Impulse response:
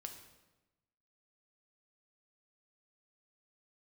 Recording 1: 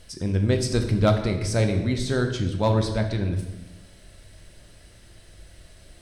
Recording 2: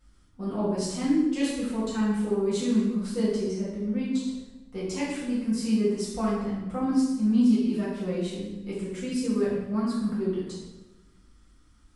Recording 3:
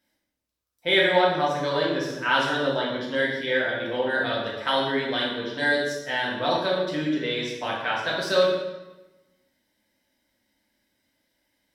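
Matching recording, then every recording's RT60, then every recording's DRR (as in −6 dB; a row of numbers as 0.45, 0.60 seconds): 1; 1.1, 1.1, 1.1 seconds; 4.0, −10.0, −4.5 decibels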